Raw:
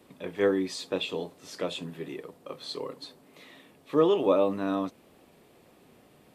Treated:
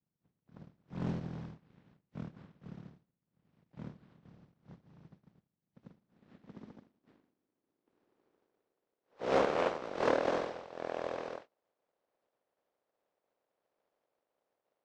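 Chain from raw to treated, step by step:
compressing power law on the bin magnitudes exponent 0.14
band-pass filter sweep 370 Hz → 1,300 Hz, 0:02.35–0:04.09
power curve on the samples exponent 1.4
wrong playback speed 78 rpm record played at 33 rpm
highs frequency-modulated by the lows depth 0.34 ms
level +5.5 dB

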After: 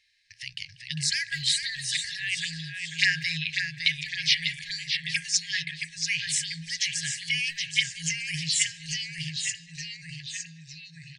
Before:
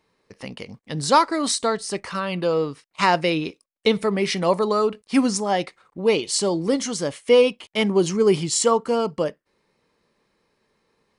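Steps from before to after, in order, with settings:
low-pass filter 5,200 Hz 12 dB per octave
hum removal 58.31 Hz, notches 29
phaser swept by the level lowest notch 150 Hz, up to 3,800 Hz, full sweep at −16.5 dBFS
bass and treble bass −13 dB, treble +4 dB
far-end echo of a speakerphone 190 ms, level −19 dB
delay with pitch and tempo change per echo 366 ms, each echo −1 semitone, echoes 3, each echo −6 dB
brick-wall band-stop 170–1,600 Hz
level +7 dB

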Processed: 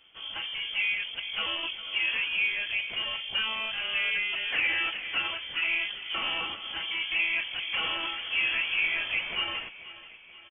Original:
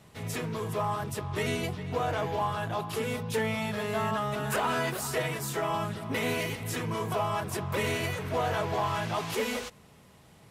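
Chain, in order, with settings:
dynamic equaliser 840 Hz, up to +7 dB, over −43 dBFS, Q 0.74
on a send: repeating echo 484 ms, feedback 51%, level −16.5 dB
on the sum: voice inversion scrambler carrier 3,300 Hz
level −4 dB

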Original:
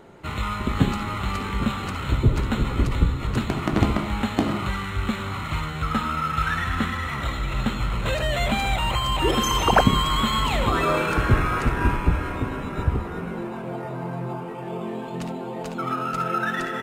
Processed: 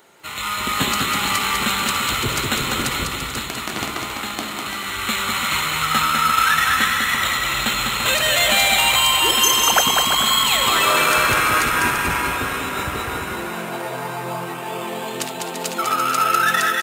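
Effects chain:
spectral tilt +4.5 dB per octave
automatic gain control gain up to 8 dB
on a send: bouncing-ball delay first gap 200 ms, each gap 0.7×, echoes 5
on the sum: level −2 dB

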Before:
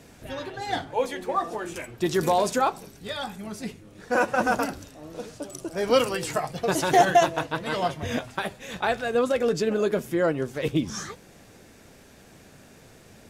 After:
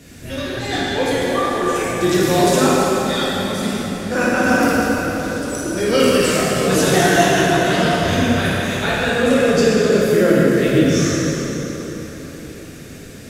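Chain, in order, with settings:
parametric band 850 Hz −12 dB 0.99 octaves
in parallel at +3 dB: brickwall limiter −21.5 dBFS, peak gain reduction 10.5 dB
on the sum: dense smooth reverb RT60 4.4 s, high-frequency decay 0.65×, DRR −8.5 dB
level −1.5 dB

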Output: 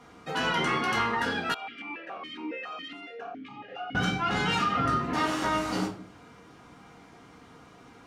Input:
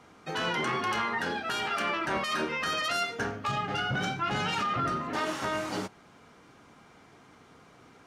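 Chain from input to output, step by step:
convolution reverb RT60 0.50 s, pre-delay 4 ms, DRR 0.5 dB
0:01.54–0:03.95: formant filter that steps through the vowels 7.2 Hz

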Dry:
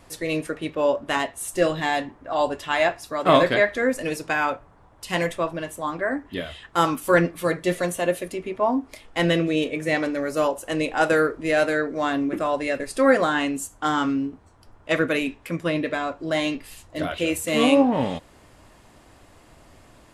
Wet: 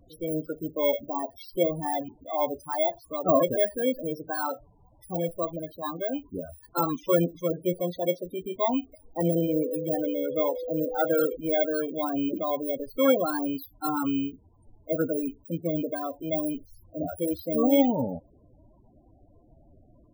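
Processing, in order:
samples in bit-reversed order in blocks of 16 samples
0:09.23–0:11.35: steady tone 500 Hz −28 dBFS
spectral peaks only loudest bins 16
level −3 dB

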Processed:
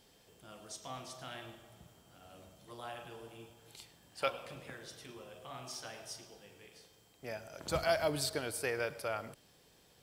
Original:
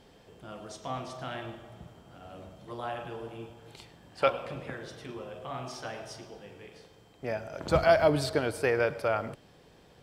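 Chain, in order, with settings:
first-order pre-emphasis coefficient 0.8
every ending faded ahead of time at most 420 dB per second
level +3.5 dB

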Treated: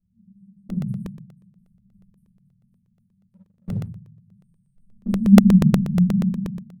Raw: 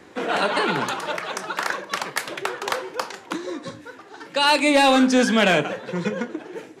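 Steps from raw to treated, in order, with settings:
0:01.62–0:02.11: sub-harmonics by changed cycles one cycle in 3, muted
camcorder AGC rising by 12 dB per second
high-frequency loss of the air 380 metres
on a send: feedback echo with a low-pass in the loop 278 ms, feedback 56%, low-pass 890 Hz, level −11 dB
on the sum: brickwall limiter −18 dBFS, peak gain reduction 9 dB
brick-wall band-stop 230–8,300 Hz
0:04.80–0:05.70: parametric band 150 Hz +9.5 dB 2.1 octaves
noise gate with hold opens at −30 dBFS
rectangular room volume 51 cubic metres, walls mixed, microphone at 2.5 metres
0:03.28–0:03.88: leveller curve on the samples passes 1
regular buffer underruns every 0.12 s, samples 64, repeat, from 0:00.70
level −2.5 dB

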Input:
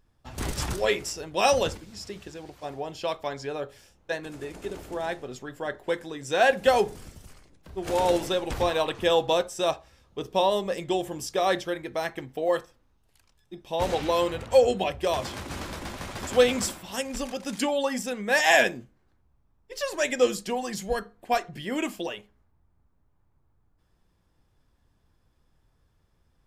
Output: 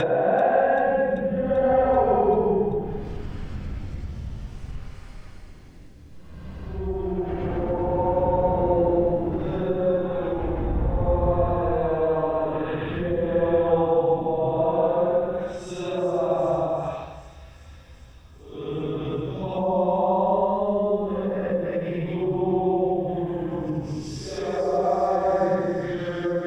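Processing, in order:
extreme stretch with random phases 4.9×, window 0.25 s, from 0:06.32
bass and treble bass +8 dB, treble −9 dB
in parallel at +0.5 dB: downward compressor 20 to 1, threshold −32 dBFS, peak gain reduction 18 dB
on the sum: treble cut that deepens with the level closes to 970 Hz, closed at −20.5 dBFS
bit reduction 12 bits
on a send: delay with a high-pass on its return 388 ms, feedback 78%, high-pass 3,800 Hz, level −10 dB

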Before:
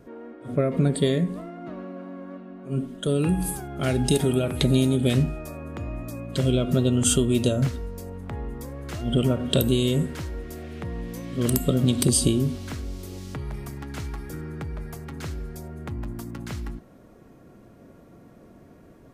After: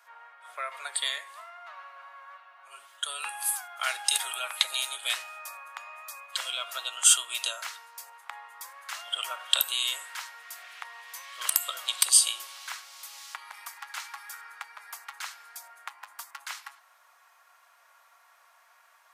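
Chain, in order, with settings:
Butterworth high-pass 900 Hz 36 dB per octave
level +4 dB

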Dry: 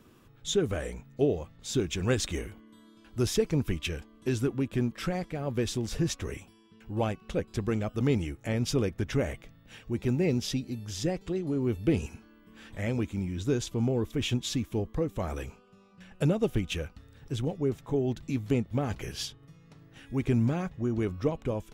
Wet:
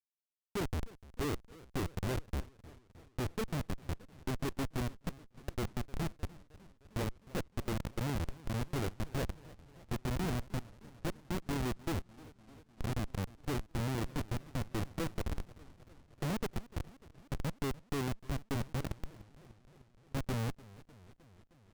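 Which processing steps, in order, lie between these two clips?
fade-out on the ending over 1.59 s
Bessel low-pass filter 1,000 Hz, order 6
comparator with hysteresis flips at −27.5 dBFS
feedback echo with a swinging delay time 303 ms, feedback 69%, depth 216 cents, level −20 dB
level −2 dB

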